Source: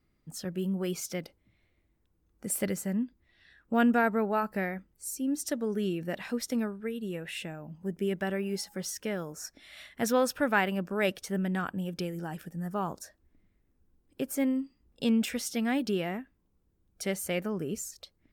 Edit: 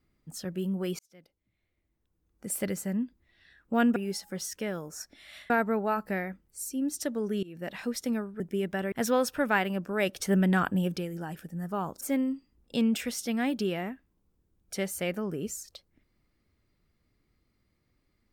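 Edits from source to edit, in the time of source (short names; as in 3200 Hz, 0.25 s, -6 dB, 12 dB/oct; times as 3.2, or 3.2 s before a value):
0.99–2.8 fade in
5.89–6.2 fade in, from -22 dB
6.86–7.88 cut
8.4–9.94 move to 3.96
11.18–11.98 gain +6.5 dB
13.03–14.29 cut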